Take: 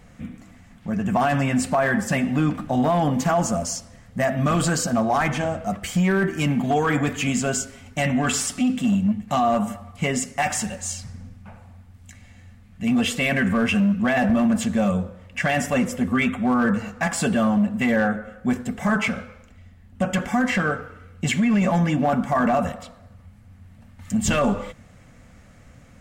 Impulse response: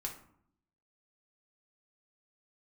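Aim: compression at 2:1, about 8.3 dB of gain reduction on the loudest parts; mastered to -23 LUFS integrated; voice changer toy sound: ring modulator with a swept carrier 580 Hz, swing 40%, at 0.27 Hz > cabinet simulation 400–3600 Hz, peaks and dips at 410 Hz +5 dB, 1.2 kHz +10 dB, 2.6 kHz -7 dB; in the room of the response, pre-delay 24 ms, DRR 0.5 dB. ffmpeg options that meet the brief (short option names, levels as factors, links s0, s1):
-filter_complex "[0:a]acompressor=threshold=0.0251:ratio=2,asplit=2[s0][s1];[1:a]atrim=start_sample=2205,adelay=24[s2];[s1][s2]afir=irnorm=-1:irlink=0,volume=1[s3];[s0][s3]amix=inputs=2:normalize=0,aeval=exprs='val(0)*sin(2*PI*580*n/s+580*0.4/0.27*sin(2*PI*0.27*n/s))':c=same,highpass=400,equalizer=f=410:t=q:w=4:g=5,equalizer=f=1200:t=q:w=4:g=10,equalizer=f=2600:t=q:w=4:g=-7,lowpass=f=3600:w=0.5412,lowpass=f=3600:w=1.3066,volume=1.88"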